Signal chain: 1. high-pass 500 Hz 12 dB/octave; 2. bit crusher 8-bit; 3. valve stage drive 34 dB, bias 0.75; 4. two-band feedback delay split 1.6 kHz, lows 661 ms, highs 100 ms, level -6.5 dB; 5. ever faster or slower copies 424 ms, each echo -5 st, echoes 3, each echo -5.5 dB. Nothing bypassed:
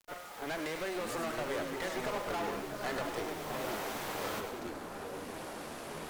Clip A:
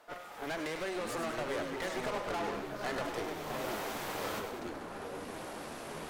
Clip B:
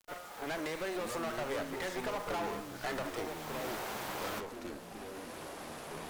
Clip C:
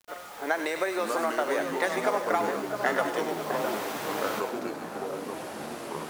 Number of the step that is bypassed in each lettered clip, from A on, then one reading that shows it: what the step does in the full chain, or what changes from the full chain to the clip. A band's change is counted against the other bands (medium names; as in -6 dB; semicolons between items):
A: 2, distortion -21 dB; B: 4, momentary loudness spread change +1 LU; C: 3, crest factor change +3.5 dB